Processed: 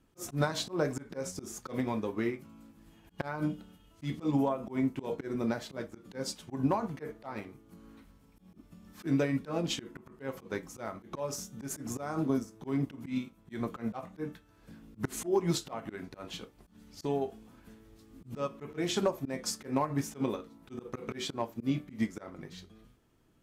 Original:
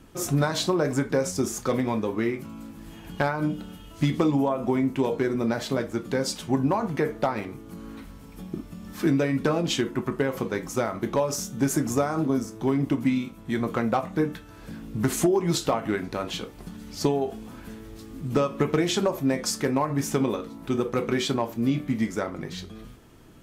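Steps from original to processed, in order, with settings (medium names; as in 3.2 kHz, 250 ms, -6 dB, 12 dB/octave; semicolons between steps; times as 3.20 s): slow attack 107 ms; upward expansion 1.5:1, over -46 dBFS; trim -3.5 dB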